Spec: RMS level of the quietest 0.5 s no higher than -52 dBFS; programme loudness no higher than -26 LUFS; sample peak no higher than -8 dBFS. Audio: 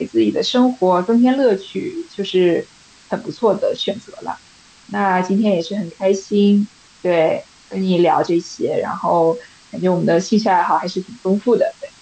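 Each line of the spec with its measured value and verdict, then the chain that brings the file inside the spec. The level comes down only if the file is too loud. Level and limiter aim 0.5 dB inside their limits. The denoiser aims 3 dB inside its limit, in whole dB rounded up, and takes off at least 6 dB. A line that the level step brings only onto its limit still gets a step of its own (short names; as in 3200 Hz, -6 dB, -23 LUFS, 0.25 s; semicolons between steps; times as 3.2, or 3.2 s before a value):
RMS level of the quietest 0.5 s -47 dBFS: fail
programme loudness -17.5 LUFS: fail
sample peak -5.5 dBFS: fail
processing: gain -9 dB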